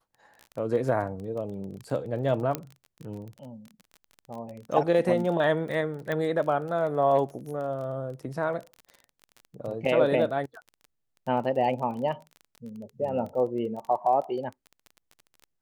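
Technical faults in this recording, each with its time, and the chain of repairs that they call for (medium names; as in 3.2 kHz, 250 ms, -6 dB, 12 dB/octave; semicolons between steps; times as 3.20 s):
crackle 23 per s -35 dBFS
2.55 s: pop -13 dBFS
6.12 s: pop -18 dBFS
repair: de-click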